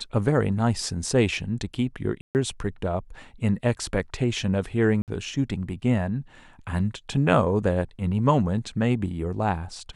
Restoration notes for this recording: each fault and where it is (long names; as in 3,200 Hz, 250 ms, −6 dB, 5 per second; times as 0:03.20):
0:02.21–0:02.35: drop-out 139 ms
0:05.02–0:05.08: drop-out 58 ms